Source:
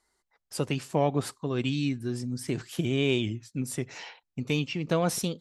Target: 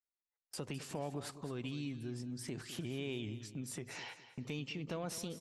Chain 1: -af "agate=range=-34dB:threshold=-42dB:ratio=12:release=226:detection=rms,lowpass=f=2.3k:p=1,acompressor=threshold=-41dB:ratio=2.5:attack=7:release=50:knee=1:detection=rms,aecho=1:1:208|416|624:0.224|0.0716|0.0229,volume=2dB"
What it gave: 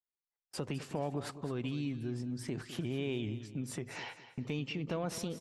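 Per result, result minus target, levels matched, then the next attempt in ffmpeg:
compressor: peak gain reduction -5 dB; 8000 Hz band -5.0 dB
-af "agate=range=-34dB:threshold=-42dB:ratio=12:release=226:detection=rms,lowpass=f=2.3k:p=1,acompressor=threshold=-49dB:ratio=2.5:attack=7:release=50:knee=1:detection=rms,aecho=1:1:208|416|624:0.224|0.0716|0.0229,volume=2dB"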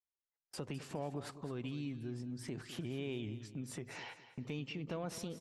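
8000 Hz band -4.0 dB
-af "agate=range=-34dB:threshold=-42dB:ratio=12:release=226:detection=rms,lowpass=f=7.5k:p=1,acompressor=threshold=-49dB:ratio=2.5:attack=7:release=50:knee=1:detection=rms,aecho=1:1:208|416|624:0.224|0.0716|0.0229,volume=2dB"

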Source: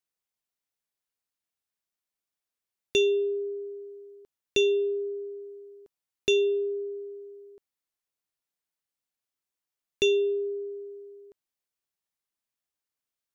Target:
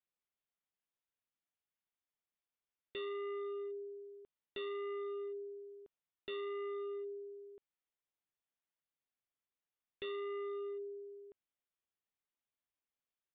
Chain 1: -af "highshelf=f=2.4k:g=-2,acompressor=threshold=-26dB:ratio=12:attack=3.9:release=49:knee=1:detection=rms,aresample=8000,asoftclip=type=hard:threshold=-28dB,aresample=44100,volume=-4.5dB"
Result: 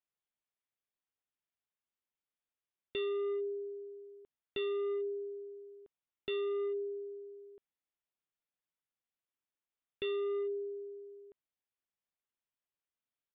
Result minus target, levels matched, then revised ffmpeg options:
hard clip: distortion -10 dB
-af "highshelf=f=2.4k:g=-2,acompressor=threshold=-26dB:ratio=12:attack=3.9:release=49:knee=1:detection=rms,aresample=8000,asoftclip=type=hard:threshold=-35.5dB,aresample=44100,volume=-4.5dB"

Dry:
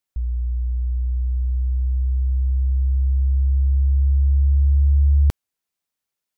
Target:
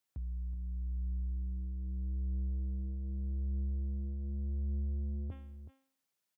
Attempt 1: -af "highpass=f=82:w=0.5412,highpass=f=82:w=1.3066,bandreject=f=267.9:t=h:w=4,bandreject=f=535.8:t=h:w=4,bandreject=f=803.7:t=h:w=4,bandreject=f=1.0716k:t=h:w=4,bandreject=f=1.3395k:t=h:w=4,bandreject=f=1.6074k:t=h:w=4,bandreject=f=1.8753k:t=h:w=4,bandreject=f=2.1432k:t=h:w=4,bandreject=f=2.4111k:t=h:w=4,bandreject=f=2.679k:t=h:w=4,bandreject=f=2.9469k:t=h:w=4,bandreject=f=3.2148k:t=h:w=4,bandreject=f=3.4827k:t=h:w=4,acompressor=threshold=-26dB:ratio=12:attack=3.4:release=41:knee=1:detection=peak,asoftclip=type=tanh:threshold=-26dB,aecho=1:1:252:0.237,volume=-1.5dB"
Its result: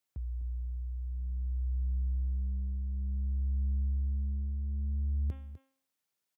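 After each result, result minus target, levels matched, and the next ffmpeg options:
echo 0.121 s early; soft clip: distortion -8 dB
-af "highpass=f=82:w=0.5412,highpass=f=82:w=1.3066,bandreject=f=267.9:t=h:w=4,bandreject=f=535.8:t=h:w=4,bandreject=f=803.7:t=h:w=4,bandreject=f=1.0716k:t=h:w=4,bandreject=f=1.3395k:t=h:w=4,bandreject=f=1.6074k:t=h:w=4,bandreject=f=1.8753k:t=h:w=4,bandreject=f=2.1432k:t=h:w=4,bandreject=f=2.4111k:t=h:w=4,bandreject=f=2.679k:t=h:w=4,bandreject=f=2.9469k:t=h:w=4,bandreject=f=3.2148k:t=h:w=4,bandreject=f=3.4827k:t=h:w=4,acompressor=threshold=-26dB:ratio=12:attack=3.4:release=41:knee=1:detection=peak,asoftclip=type=tanh:threshold=-26dB,aecho=1:1:373:0.237,volume=-1.5dB"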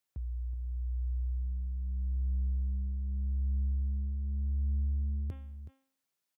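soft clip: distortion -8 dB
-af "highpass=f=82:w=0.5412,highpass=f=82:w=1.3066,bandreject=f=267.9:t=h:w=4,bandreject=f=535.8:t=h:w=4,bandreject=f=803.7:t=h:w=4,bandreject=f=1.0716k:t=h:w=4,bandreject=f=1.3395k:t=h:w=4,bandreject=f=1.6074k:t=h:w=4,bandreject=f=1.8753k:t=h:w=4,bandreject=f=2.1432k:t=h:w=4,bandreject=f=2.4111k:t=h:w=4,bandreject=f=2.679k:t=h:w=4,bandreject=f=2.9469k:t=h:w=4,bandreject=f=3.2148k:t=h:w=4,bandreject=f=3.4827k:t=h:w=4,acompressor=threshold=-26dB:ratio=12:attack=3.4:release=41:knee=1:detection=peak,asoftclip=type=tanh:threshold=-32.5dB,aecho=1:1:373:0.237,volume=-1.5dB"

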